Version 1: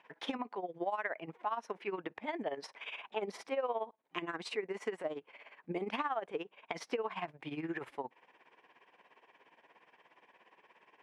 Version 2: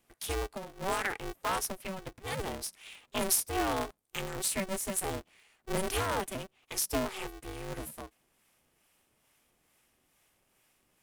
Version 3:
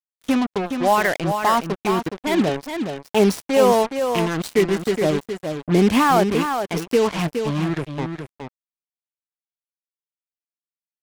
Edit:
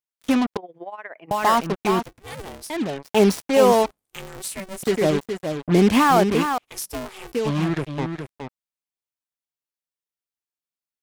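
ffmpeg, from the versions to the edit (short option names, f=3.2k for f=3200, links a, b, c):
-filter_complex "[1:a]asplit=3[a][b][c];[2:a]asplit=5[d][e][f][g][h];[d]atrim=end=0.572[i];[0:a]atrim=start=0.568:end=1.312[j];[e]atrim=start=1.308:end=2.062[k];[a]atrim=start=2.058:end=2.702[l];[f]atrim=start=2.698:end=3.862[m];[b]atrim=start=3.858:end=4.832[n];[g]atrim=start=4.828:end=6.582[o];[c]atrim=start=6.578:end=7.322[p];[h]atrim=start=7.318[q];[i][j]acrossfade=d=0.004:c1=hsin:c2=hsin[r];[r][k]acrossfade=d=0.004:c1=hsin:c2=hsin[s];[s][l]acrossfade=d=0.004:c1=hsin:c2=hsin[t];[t][m]acrossfade=d=0.004:c1=hsin:c2=hsin[u];[u][n]acrossfade=d=0.004:c1=hsin:c2=hsin[v];[v][o]acrossfade=d=0.004:c1=hsin:c2=hsin[w];[w][p]acrossfade=d=0.004:c1=hsin:c2=hsin[x];[x][q]acrossfade=d=0.004:c1=hsin:c2=hsin"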